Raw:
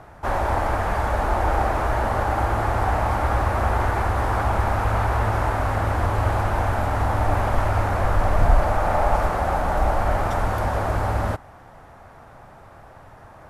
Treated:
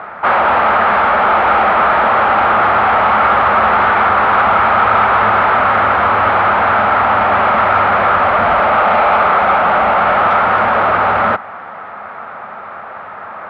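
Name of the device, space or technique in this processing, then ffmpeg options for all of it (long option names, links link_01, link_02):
overdrive pedal into a guitar cabinet: -filter_complex "[0:a]asplit=2[link_01][link_02];[link_02]highpass=frequency=720:poles=1,volume=25dB,asoftclip=type=tanh:threshold=-4dB[link_03];[link_01][link_03]amix=inputs=2:normalize=0,lowpass=frequency=2600:poles=1,volume=-6dB,highpass=98,equalizer=frequency=130:width_type=q:width=4:gain=-8,equalizer=frequency=210:width_type=q:width=4:gain=7,equalizer=frequency=300:width_type=q:width=4:gain=-6,equalizer=frequency=1300:width_type=q:width=4:gain=9,equalizer=frequency=2200:width_type=q:width=4:gain=4,lowpass=frequency=3500:width=0.5412,lowpass=frequency=3500:width=1.3066,volume=-1dB"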